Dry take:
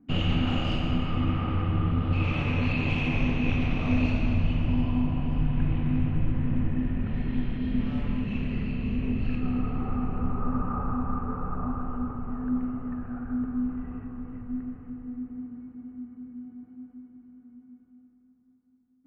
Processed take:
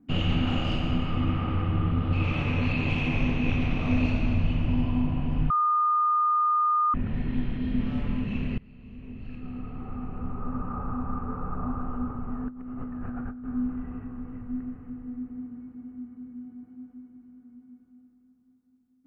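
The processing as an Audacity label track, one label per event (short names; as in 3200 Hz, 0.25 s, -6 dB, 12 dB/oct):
5.500000	6.940000	bleep 1220 Hz -20 dBFS
8.580000	11.830000	fade in, from -23.5 dB
12.480000	13.460000	negative-ratio compressor -36 dBFS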